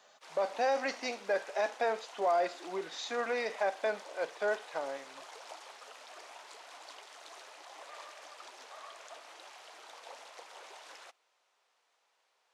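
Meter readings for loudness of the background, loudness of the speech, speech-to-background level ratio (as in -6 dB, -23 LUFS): -50.0 LUFS, -34.0 LUFS, 16.0 dB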